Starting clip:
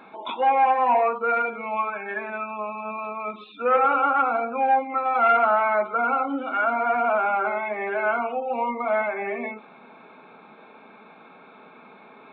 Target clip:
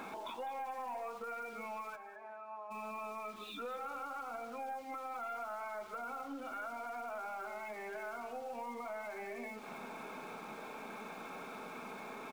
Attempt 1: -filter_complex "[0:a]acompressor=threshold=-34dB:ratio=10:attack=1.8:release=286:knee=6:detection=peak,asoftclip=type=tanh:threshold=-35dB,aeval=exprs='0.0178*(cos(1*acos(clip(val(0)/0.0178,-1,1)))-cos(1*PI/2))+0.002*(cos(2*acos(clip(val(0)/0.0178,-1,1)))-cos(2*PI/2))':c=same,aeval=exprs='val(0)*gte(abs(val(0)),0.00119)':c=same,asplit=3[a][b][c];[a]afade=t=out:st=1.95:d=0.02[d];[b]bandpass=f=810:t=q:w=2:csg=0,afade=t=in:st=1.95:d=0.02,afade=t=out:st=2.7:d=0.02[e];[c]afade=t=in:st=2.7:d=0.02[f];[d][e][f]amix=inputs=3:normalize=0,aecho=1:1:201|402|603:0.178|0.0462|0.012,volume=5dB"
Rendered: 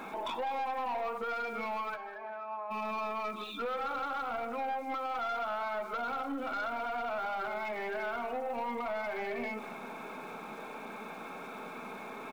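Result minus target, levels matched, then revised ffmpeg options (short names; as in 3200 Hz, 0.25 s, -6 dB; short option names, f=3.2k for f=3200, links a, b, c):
compressor: peak gain reduction -9.5 dB
-filter_complex "[0:a]acompressor=threshold=-44.5dB:ratio=10:attack=1.8:release=286:knee=6:detection=peak,asoftclip=type=tanh:threshold=-35dB,aeval=exprs='0.0178*(cos(1*acos(clip(val(0)/0.0178,-1,1)))-cos(1*PI/2))+0.002*(cos(2*acos(clip(val(0)/0.0178,-1,1)))-cos(2*PI/2))':c=same,aeval=exprs='val(0)*gte(abs(val(0)),0.00119)':c=same,asplit=3[a][b][c];[a]afade=t=out:st=1.95:d=0.02[d];[b]bandpass=f=810:t=q:w=2:csg=0,afade=t=in:st=1.95:d=0.02,afade=t=out:st=2.7:d=0.02[e];[c]afade=t=in:st=2.7:d=0.02[f];[d][e][f]amix=inputs=3:normalize=0,aecho=1:1:201|402|603:0.178|0.0462|0.012,volume=5dB"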